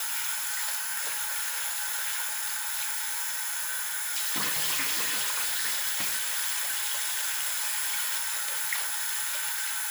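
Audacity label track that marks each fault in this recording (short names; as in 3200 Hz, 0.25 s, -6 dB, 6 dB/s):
3.790000	6.290000	clipped -23.5 dBFS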